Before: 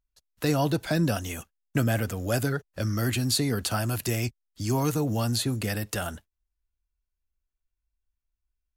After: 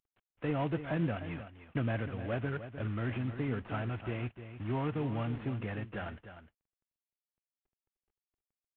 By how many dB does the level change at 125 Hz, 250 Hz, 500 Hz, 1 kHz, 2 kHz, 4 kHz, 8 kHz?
-8.0 dB, -8.0 dB, -8.0 dB, -7.5 dB, -8.0 dB, -19.5 dB, under -40 dB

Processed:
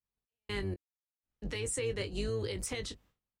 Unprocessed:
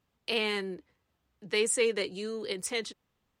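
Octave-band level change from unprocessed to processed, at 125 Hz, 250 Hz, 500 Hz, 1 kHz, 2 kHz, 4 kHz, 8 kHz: +10.0 dB, -3.0 dB, -6.5 dB, -8.0 dB, -9.0 dB, -8.5 dB, -5.5 dB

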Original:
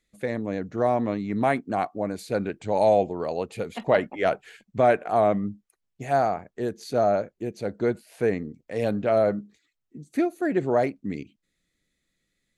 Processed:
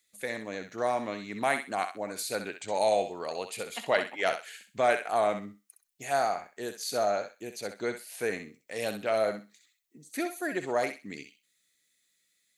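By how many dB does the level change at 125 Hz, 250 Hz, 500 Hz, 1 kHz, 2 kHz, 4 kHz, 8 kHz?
-15.0 dB, -11.0 dB, -6.5 dB, -4.5 dB, +0.5 dB, +5.0 dB, no reading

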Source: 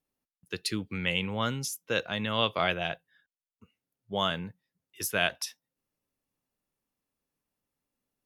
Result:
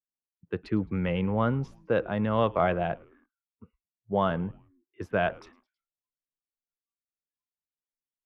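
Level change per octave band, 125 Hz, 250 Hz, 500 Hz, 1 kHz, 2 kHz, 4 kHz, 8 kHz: +6.5 dB, +6.0 dB, +5.5 dB, +3.5 dB, -4.0 dB, -14.0 dB, under -25 dB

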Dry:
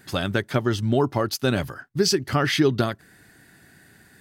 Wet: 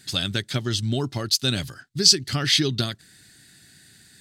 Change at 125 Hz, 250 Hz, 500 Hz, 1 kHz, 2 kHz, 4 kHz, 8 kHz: -1.0 dB, -4.5 dB, -8.0 dB, -8.5 dB, -3.0 dB, +8.5 dB, +7.5 dB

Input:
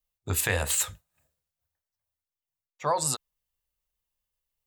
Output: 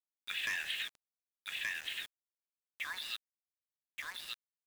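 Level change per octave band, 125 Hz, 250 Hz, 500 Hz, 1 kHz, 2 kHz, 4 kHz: under -30 dB, -24.0 dB, -30.0 dB, -19.0 dB, -1.5 dB, -0.5 dB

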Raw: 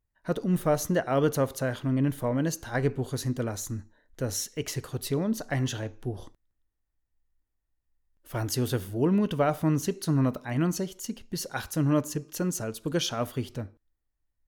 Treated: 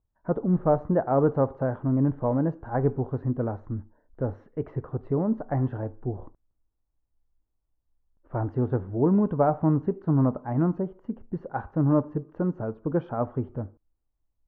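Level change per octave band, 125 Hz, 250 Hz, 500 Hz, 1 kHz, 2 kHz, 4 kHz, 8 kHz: +2.5 dB, +2.5 dB, +2.5 dB, +3.5 dB, -8.0 dB, under -30 dB, under -40 dB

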